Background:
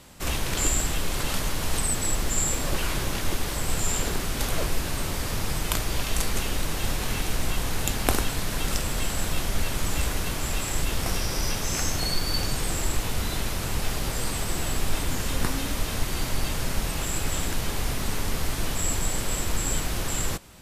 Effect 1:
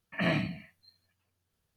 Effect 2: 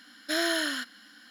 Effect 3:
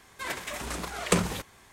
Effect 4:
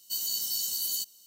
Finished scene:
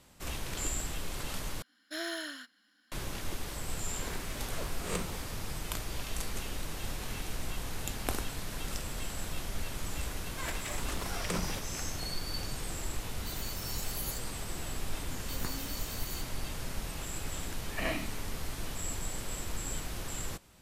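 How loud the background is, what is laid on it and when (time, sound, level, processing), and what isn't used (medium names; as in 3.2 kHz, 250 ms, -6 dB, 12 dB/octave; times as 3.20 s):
background -10.5 dB
1.62 s: replace with 2 -9.5 dB + upward expansion, over -40 dBFS
3.83 s: add 3 -14.5 dB + reverse spectral sustain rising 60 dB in 0.46 s
10.18 s: add 3 -5.5 dB + peak limiter -16 dBFS
13.15 s: add 4 -3 dB + spectral noise reduction 10 dB
15.18 s: add 4 -13 dB
17.59 s: add 1 -4 dB + high-pass 250 Hz 24 dB/octave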